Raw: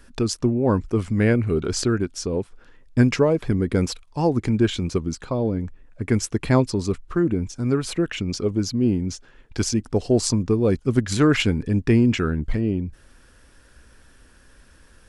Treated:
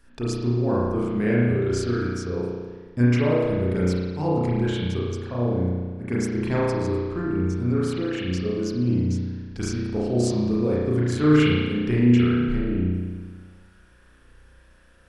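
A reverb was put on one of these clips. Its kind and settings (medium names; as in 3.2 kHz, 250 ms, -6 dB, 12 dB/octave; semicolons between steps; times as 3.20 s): spring tank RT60 1.5 s, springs 33 ms, chirp 25 ms, DRR -7 dB; trim -9.5 dB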